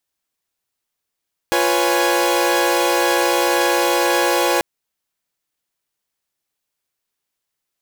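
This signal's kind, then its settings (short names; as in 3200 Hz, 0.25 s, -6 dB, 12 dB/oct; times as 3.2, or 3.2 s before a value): chord F4/B4/C#5/G#5 saw, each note -18 dBFS 3.09 s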